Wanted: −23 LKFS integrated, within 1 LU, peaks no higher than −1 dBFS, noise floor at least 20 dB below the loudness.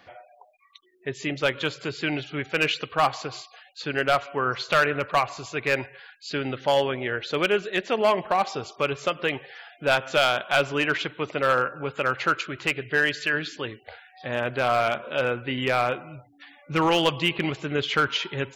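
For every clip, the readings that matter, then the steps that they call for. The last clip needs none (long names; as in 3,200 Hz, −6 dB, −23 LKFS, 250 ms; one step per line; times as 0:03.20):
share of clipped samples 0.4%; peaks flattened at −13.5 dBFS; integrated loudness −25.0 LKFS; sample peak −13.5 dBFS; target loudness −23.0 LKFS
→ clipped peaks rebuilt −13.5 dBFS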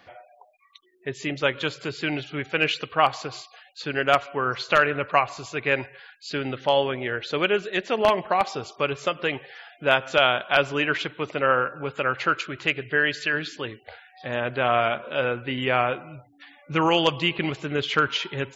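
share of clipped samples 0.0%; integrated loudness −24.5 LKFS; sample peak −4.5 dBFS; target loudness −23.0 LKFS
→ level +1.5 dB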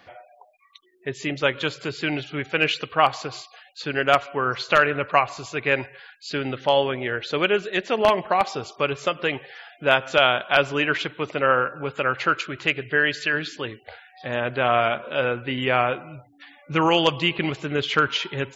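integrated loudness −23.0 LKFS; sample peak −3.0 dBFS; background noise floor −56 dBFS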